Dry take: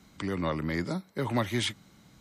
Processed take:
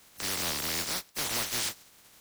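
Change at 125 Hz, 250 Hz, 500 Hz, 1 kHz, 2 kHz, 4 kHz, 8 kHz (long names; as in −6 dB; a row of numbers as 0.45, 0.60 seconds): −13.0, −12.5, −8.5, −3.5, +0.5, +5.0, +13.0 decibels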